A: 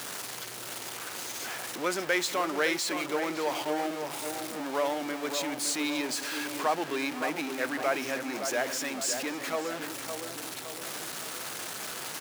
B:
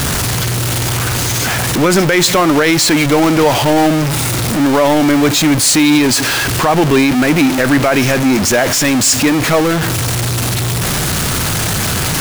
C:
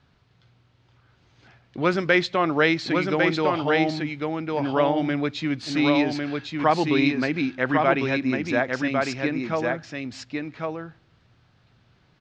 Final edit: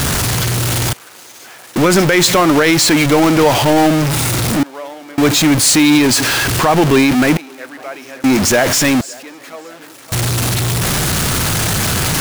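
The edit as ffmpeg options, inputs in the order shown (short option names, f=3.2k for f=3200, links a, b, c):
-filter_complex "[0:a]asplit=4[a][b][c][d];[1:a]asplit=5[e][f][g][h][i];[e]atrim=end=0.932[j];[a]atrim=start=0.928:end=1.762[k];[f]atrim=start=1.758:end=4.632[l];[b]atrim=start=4.628:end=5.182[m];[g]atrim=start=5.178:end=7.372[n];[c]atrim=start=7.368:end=8.242[o];[h]atrim=start=8.238:end=9.012[p];[d]atrim=start=9.008:end=10.122[q];[i]atrim=start=10.118[r];[j][k]acrossfade=d=0.004:c1=hsin:c2=hsin[s];[s][l]acrossfade=d=0.004:c1=hsin:c2=hsin[t];[t][m]acrossfade=d=0.004:c1=hsin:c2=hsin[u];[u][n]acrossfade=d=0.004:c1=hsin:c2=hsin[v];[v][o]acrossfade=d=0.004:c1=hsin:c2=hsin[w];[w][p]acrossfade=d=0.004:c1=hsin:c2=hsin[x];[x][q]acrossfade=d=0.004:c1=hsin:c2=hsin[y];[y][r]acrossfade=d=0.004:c1=hsin:c2=hsin"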